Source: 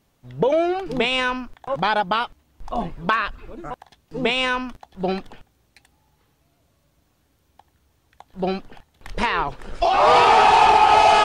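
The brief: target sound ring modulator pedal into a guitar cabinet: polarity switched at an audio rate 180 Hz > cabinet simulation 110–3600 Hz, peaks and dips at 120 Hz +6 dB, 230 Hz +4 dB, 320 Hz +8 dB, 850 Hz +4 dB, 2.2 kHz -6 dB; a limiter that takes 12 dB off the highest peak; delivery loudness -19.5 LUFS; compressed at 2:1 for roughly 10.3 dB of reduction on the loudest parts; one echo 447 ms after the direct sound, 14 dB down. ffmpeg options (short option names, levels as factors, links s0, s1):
-af "acompressor=threshold=0.0316:ratio=2,alimiter=level_in=1.19:limit=0.0631:level=0:latency=1,volume=0.841,aecho=1:1:447:0.2,aeval=exprs='val(0)*sgn(sin(2*PI*180*n/s))':c=same,highpass=110,equalizer=f=120:t=q:w=4:g=6,equalizer=f=230:t=q:w=4:g=4,equalizer=f=320:t=q:w=4:g=8,equalizer=f=850:t=q:w=4:g=4,equalizer=f=2200:t=q:w=4:g=-6,lowpass=f=3600:w=0.5412,lowpass=f=3600:w=1.3066,volume=5.01"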